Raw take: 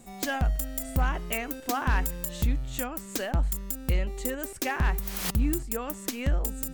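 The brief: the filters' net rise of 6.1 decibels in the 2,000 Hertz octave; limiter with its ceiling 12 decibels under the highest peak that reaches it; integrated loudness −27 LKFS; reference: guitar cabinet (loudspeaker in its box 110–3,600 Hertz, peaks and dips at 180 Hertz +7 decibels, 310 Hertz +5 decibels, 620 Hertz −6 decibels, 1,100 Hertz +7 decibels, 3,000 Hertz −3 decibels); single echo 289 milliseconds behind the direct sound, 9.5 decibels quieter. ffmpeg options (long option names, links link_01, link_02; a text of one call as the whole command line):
ffmpeg -i in.wav -af "equalizer=frequency=2000:width_type=o:gain=7.5,alimiter=level_in=1dB:limit=-24dB:level=0:latency=1,volume=-1dB,highpass=110,equalizer=frequency=180:width_type=q:width=4:gain=7,equalizer=frequency=310:width_type=q:width=4:gain=5,equalizer=frequency=620:width_type=q:width=4:gain=-6,equalizer=frequency=1100:width_type=q:width=4:gain=7,equalizer=frequency=3000:width_type=q:width=4:gain=-3,lowpass=frequency=3600:width=0.5412,lowpass=frequency=3600:width=1.3066,aecho=1:1:289:0.335,volume=9dB" out.wav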